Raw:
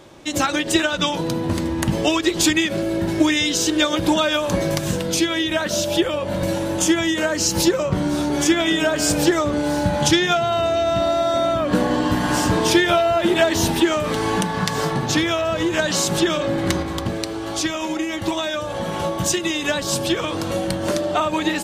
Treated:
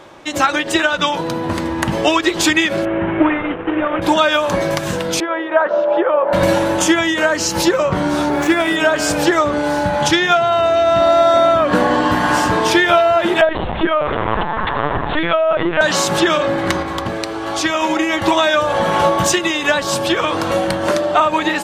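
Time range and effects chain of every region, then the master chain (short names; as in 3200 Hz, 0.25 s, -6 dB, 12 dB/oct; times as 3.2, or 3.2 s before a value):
2.85–4.02 CVSD 16 kbps + air absorption 130 m
5.2–6.33 Butterworth band-pass 750 Hz, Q 0.75 + air absorption 56 m
8.3–8.76 median filter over 9 samples + notch 3100 Hz
13.41–15.81 LPF 2900 Hz 6 dB/oct + LPC vocoder at 8 kHz pitch kept
whole clip: bell 1200 Hz +10.5 dB 2.9 oct; AGC; gain -1 dB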